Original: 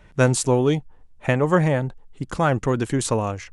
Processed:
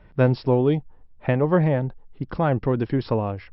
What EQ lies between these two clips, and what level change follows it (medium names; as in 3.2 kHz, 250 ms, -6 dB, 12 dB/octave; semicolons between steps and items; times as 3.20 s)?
dynamic bell 1.3 kHz, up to -4 dB, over -37 dBFS, Q 2.2; brick-wall FIR low-pass 5.5 kHz; treble shelf 2.2 kHz -11 dB; 0.0 dB